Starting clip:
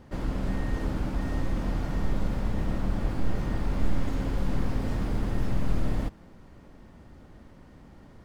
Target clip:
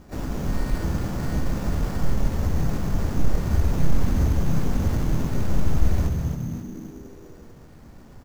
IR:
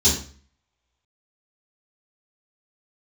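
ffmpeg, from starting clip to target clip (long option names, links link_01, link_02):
-filter_complex "[0:a]asplit=7[link_01][link_02][link_03][link_04][link_05][link_06][link_07];[link_02]adelay=268,afreqshift=-80,volume=-5dB[link_08];[link_03]adelay=536,afreqshift=-160,volume=-11.2dB[link_09];[link_04]adelay=804,afreqshift=-240,volume=-17.4dB[link_10];[link_05]adelay=1072,afreqshift=-320,volume=-23.6dB[link_11];[link_06]adelay=1340,afreqshift=-400,volume=-29.8dB[link_12];[link_07]adelay=1608,afreqshift=-480,volume=-36dB[link_13];[link_01][link_08][link_09][link_10][link_11][link_12][link_13]amix=inputs=7:normalize=0,asplit=3[link_14][link_15][link_16];[link_15]asetrate=35002,aresample=44100,atempo=1.25992,volume=-1dB[link_17];[link_16]asetrate=55563,aresample=44100,atempo=0.793701,volume=-10dB[link_18];[link_14][link_17][link_18]amix=inputs=3:normalize=0,acrusher=samples=7:mix=1:aa=0.000001"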